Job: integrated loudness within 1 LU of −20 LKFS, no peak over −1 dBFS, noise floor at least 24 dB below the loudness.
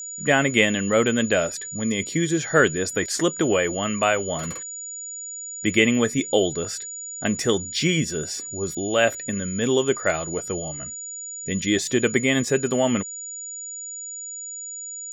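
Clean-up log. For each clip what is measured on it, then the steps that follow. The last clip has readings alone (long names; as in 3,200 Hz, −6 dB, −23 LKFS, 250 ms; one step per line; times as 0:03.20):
interfering tone 6,900 Hz; level of the tone −32 dBFS; integrated loudness −23.5 LKFS; sample peak −2.5 dBFS; target loudness −20.0 LKFS
→ notch filter 6,900 Hz, Q 30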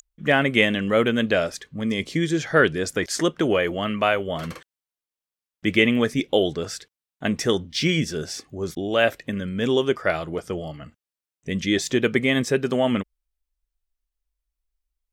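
interfering tone none found; integrated loudness −23.0 LKFS; sample peak −2.5 dBFS; target loudness −20.0 LKFS
→ level +3 dB
brickwall limiter −1 dBFS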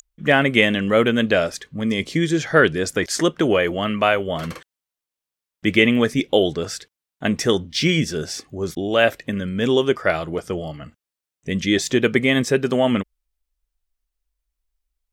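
integrated loudness −20.0 LKFS; sample peak −1.0 dBFS; background noise floor −88 dBFS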